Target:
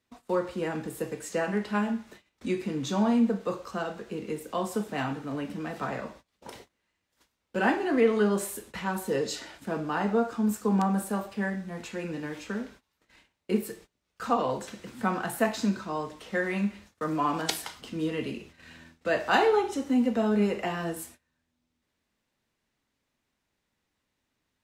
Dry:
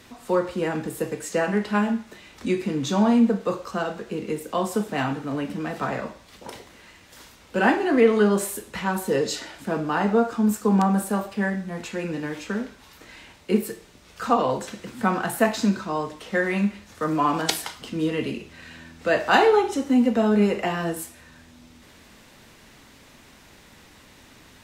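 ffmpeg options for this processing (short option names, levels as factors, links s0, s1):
-af "agate=range=0.0631:threshold=0.00708:ratio=16:detection=peak,volume=0.531"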